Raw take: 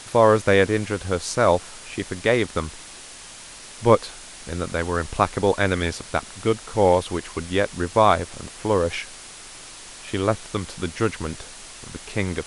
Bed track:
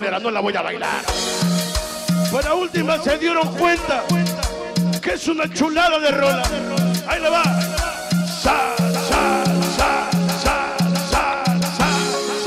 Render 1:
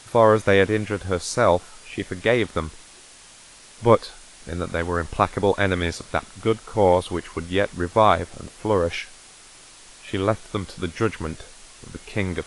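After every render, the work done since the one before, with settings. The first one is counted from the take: noise print and reduce 6 dB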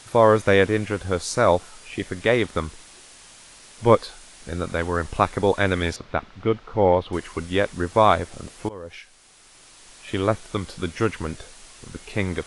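5.96–7.13 air absorption 240 m; 8.69–10.1 fade in, from -21.5 dB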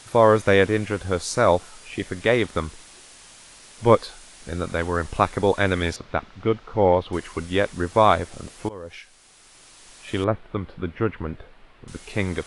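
10.24–11.88 air absorption 480 m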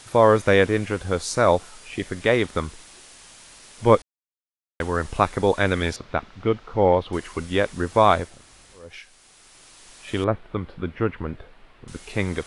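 4.02–4.8 mute; 8.32–8.83 room tone, crossfade 0.24 s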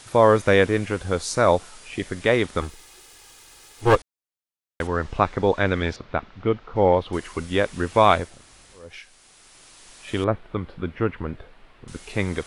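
2.61–3.96 minimum comb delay 2.4 ms; 4.87–6.76 air absorption 120 m; 7.73–8.18 bell 2600 Hz +5.5 dB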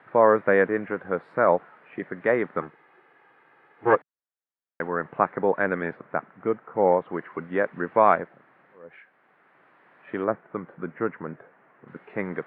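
elliptic band-pass 150–1800 Hz, stop band 50 dB; low shelf 420 Hz -5 dB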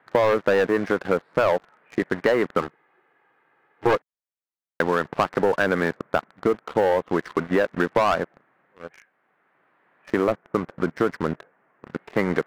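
sample leveller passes 3; compressor, threshold -17 dBFS, peak gain reduction 9 dB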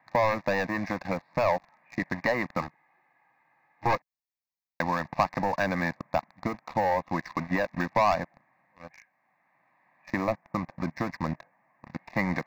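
fixed phaser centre 2100 Hz, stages 8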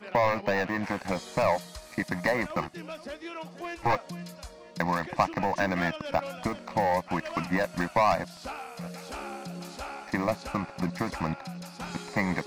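add bed track -21.5 dB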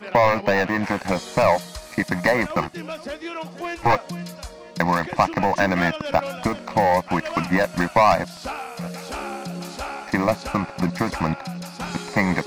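gain +7.5 dB; limiter -3 dBFS, peak gain reduction 2 dB

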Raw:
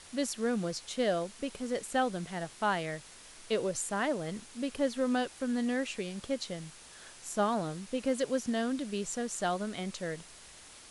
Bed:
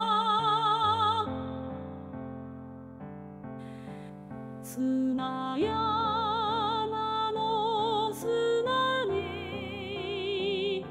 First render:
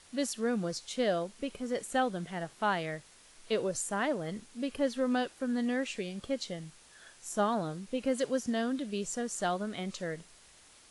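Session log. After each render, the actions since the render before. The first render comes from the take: noise print and reduce 6 dB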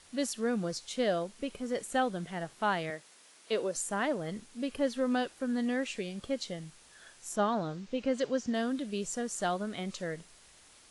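2.9–3.76 HPF 240 Hz; 7.36–8.54 LPF 6600 Hz 24 dB/oct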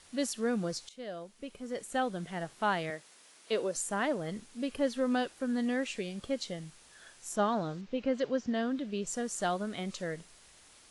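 0.89–2.37 fade in, from -17 dB; 7.81–9.07 air absorption 110 m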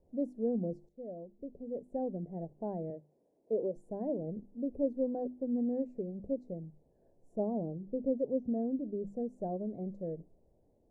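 inverse Chebyshev low-pass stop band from 1200 Hz, stop band 40 dB; notches 50/100/150/200/250/300/350 Hz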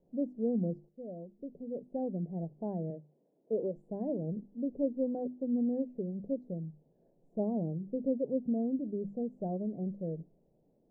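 LPF 1000 Hz 6 dB/oct; resonant low shelf 120 Hz -7 dB, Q 3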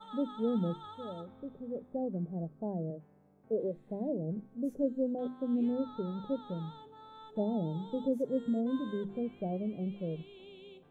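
add bed -22 dB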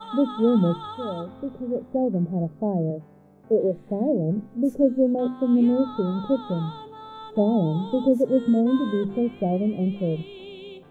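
gain +12 dB

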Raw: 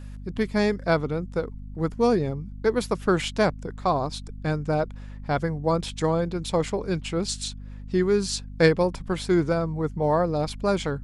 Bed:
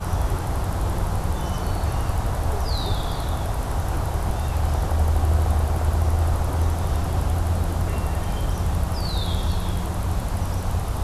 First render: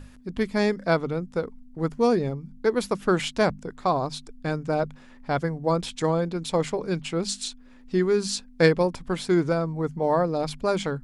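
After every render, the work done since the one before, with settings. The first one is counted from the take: notches 50/100/150/200 Hz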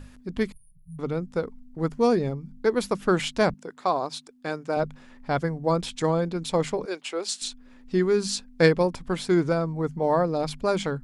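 0.52–0.99 brick-wall FIR band-stop 150–9300 Hz; 3.54–4.77 Bessel high-pass 330 Hz; 6.85–7.42 HPF 370 Hz 24 dB/oct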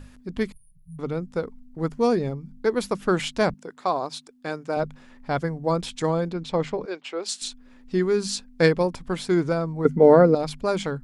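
6.33–7.26 air absorption 120 m; 9.85–10.35 small resonant body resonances 250/420/1400/2000 Hz, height 14 dB, ringing for 25 ms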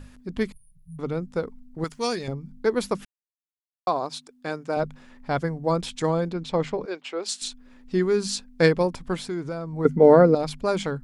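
1.84–2.28 tilt shelf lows -9.5 dB, about 1300 Hz; 3.05–3.87 mute; 9.16–9.73 compressor 2:1, threshold -33 dBFS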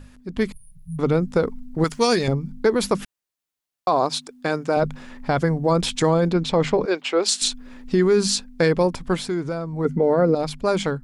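AGC gain up to 11.5 dB; limiter -9.5 dBFS, peak gain reduction 8.5 dB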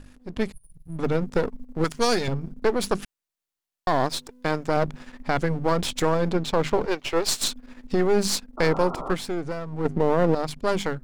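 half-wave gain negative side -12 dB; 8.57–9.13 painted sound noise 240–1400 Hz -34 dBFS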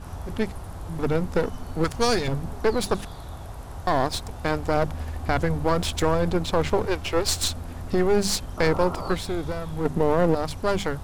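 add bed -12.5 dB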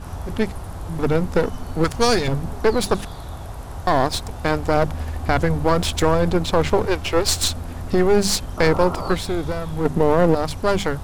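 gain +4.5 dB

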